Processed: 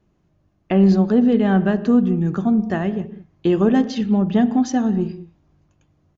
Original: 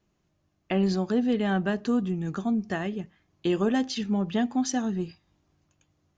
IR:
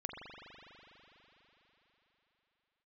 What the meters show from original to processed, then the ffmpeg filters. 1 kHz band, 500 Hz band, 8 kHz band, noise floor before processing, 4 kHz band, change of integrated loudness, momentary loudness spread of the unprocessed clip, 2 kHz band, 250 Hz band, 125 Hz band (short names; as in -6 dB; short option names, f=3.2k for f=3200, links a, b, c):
+6.5 dB, +8.0 dB, n/a, -73 dBFS, 0.0 dB, +9.0 dB, 8 LU, +3.5 dB, +10.0 dB, +10.5 dB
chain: -filter_complex "[0:a]highshelf=f=2.2k:g=-10,asplit=2[a][b];[1:a]atrim=start_sample=2205,afade=t=out:st=0.26:d=0.01,atrim=end_sample=11907,lowshelf=f=450:g=9.5[c];[b][c]afir=irnorm=-1:irlink=0,volume=-9dB[d];[a][d]amix=inputs=2:normalize=0,aresample=16000,aresample=44100,volume=5.5dB"